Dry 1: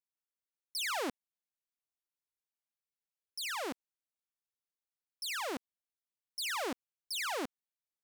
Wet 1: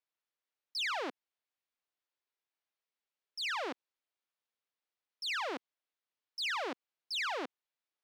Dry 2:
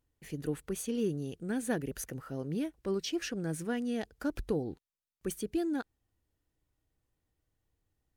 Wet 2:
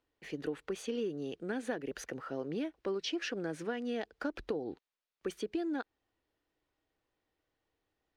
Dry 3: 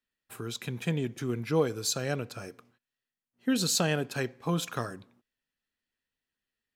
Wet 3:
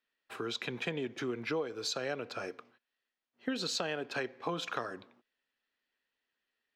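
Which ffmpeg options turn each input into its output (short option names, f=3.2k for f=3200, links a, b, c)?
-filter_complex "[0:a]acrossover=split=280 5100:gain=0.158 1 0.0794[a][b][c];[a][b][c]amix=inputs=3:normalize=0,acompressor=threshold=-37dB:ratio=6,volume=5dB"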